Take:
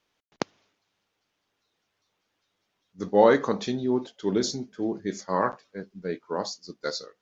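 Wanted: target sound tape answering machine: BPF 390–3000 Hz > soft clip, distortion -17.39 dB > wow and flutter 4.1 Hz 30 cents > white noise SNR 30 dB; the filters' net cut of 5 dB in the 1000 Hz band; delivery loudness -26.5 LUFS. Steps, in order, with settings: BPF 390–3000 Hz; bell 1000 Hz -6 dB; soft clip -14 dBFS; wow and flutter 4.1 Hz 30 cents; white noise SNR 30 dB; gain +6 dB

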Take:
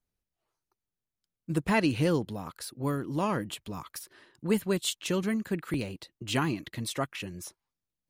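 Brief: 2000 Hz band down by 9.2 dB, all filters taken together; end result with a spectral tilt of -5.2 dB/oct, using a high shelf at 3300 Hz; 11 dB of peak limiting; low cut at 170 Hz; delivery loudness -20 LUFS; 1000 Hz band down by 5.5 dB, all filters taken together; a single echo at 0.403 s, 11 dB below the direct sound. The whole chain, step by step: HPF 170 Hz; bell 1000 Hz -4 dB; bell 2000 Hz -9 dB; high shelf 3300 Hz -5.5 dB; limiter -27.5 dBFS; echo 0.403 s -11 dB; gain +19 dB

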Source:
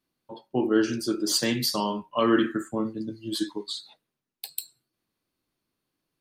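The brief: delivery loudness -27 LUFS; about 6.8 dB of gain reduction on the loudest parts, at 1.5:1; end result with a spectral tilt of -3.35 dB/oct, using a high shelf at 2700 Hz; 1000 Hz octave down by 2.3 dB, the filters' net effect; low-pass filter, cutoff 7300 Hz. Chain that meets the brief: LPF 7300 Hz; bell 1000 Hz -3.5 dB; high shelf 2700 Hz +5 dB; compressor 1.5:1, threshold -36 dBFS; gain +5 dB

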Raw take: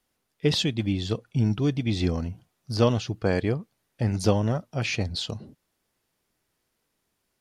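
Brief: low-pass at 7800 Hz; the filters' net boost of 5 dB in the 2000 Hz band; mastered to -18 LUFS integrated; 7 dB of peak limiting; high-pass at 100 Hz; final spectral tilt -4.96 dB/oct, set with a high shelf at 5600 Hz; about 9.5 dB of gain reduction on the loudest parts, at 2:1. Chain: HPF 100 Hz; LPF 7800 Hz; bell 2000 Hz +5.5 dB; high shelf 5600 Hz +5.5 dB; compressor 2:1, threshold -33 dBFS; gain +16.5 dB; limiter -5.5 dBFS

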